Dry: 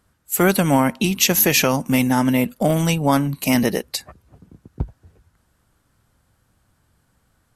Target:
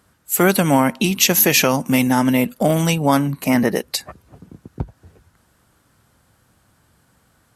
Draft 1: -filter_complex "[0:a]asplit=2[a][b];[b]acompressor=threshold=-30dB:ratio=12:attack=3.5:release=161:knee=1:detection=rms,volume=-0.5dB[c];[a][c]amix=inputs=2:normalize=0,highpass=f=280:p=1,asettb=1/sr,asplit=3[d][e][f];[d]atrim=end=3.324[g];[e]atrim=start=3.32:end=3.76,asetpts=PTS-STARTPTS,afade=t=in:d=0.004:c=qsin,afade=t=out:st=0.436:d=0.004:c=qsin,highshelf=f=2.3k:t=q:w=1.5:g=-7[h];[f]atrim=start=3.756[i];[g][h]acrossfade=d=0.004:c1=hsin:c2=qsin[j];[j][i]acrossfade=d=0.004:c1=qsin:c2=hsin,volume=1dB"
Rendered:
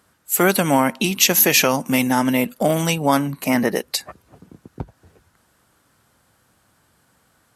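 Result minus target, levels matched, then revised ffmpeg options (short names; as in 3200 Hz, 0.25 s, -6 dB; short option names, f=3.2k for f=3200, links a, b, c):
125 Hz band -3.5 dB
-filter_complex "[0:a]asplit=2[a][b];[b]acompressor=threshold=-30dB:ratio=12:attack=3.5:release=161:knee=1:detection=rms,volume=-0.5dB[c];[a][c]amix=inputs=2:normalize=0,highpass=f=110:p=1,asettb=1/sr,asplit=3[d][e][f];[d]atrim=end=3.324[g];[e]atrim=start=3.32:end=3.76,asetpts=PTS-STARTPTS,afade=t=in:d=0.004:c=qsin,afade=t=out:st=0.436:d=0.004:c=qsin,highshelf=f=2.3k:t=q:w=1.5:g=-7[h];[f]atrim=start=3.756[i];[g][h]acrossfade=d=0.004:c1=hsin:c2=qsin[j];[j][i]acrossfade=d=0.004:c1=qsin:c2=hsin,volume=1dB"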